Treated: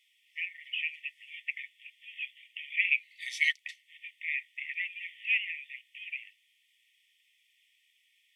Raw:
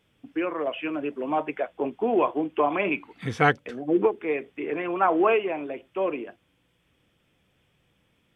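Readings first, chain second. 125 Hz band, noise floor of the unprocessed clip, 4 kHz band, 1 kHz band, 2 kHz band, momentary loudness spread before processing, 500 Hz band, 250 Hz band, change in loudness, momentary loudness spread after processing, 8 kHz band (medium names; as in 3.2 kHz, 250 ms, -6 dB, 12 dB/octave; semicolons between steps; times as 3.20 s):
under -40 dB, -69 dBFS, +3.5 dB, under -40 dB, +0.5 dB, 10 LU, under -40 dB, under -40 dB, -6.5 dB, 17 LU, no reading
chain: brick-wall FIR high-pass 1.8 kHz; trim +3.5 dB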